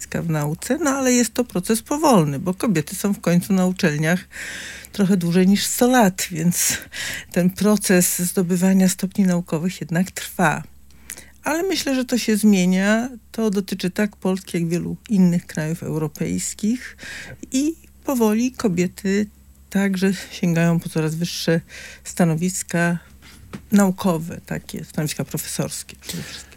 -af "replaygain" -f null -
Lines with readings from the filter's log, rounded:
track_gain = +0.6 dB
track_peak = 0.596